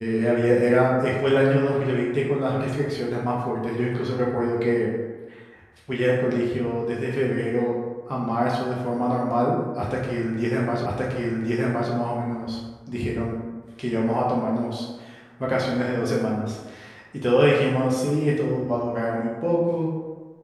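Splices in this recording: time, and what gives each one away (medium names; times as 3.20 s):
10.86 s: repeat of the last 1.07 s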